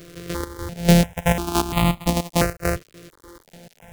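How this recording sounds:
a buzz of ramps at a fixed pitch in blocks of 256 samples
chopped level 3.4 Hz, depth 65%, duty 50%
a quantiser's noise floor 8 bits, dither none
notches that jump at a steady rate 2.9 Hz 230–1,600 Hz

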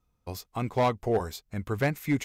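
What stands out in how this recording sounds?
background noise floor −75 dBFS
spectral slope −6.0 dB per octave

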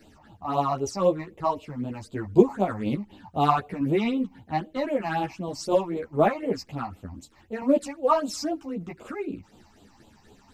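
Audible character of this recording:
phaser sweep stages 8, 3.9 Hz, lowest notch 420–1,800 Hz
tremolo saw down 4.2 Hz, depth 35%
a shimmering, thickened sound

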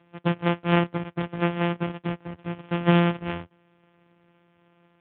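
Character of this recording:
a buzz of ramps at a fixed pitch in blocks of 256 samples
AMR narrowband

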